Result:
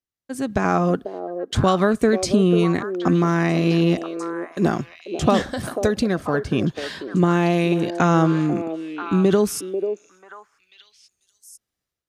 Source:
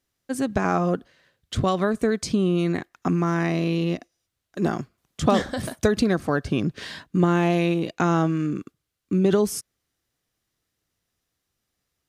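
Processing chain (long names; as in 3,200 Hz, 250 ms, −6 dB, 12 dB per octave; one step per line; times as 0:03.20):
noise gate −50 dBFS, range −12 dB
automatic gain control gain up to 11.5 dB
echo through a band-pass that steps 491 ms, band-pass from 470 Hz, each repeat 1.4 octaves, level −5 dB
level −4 dB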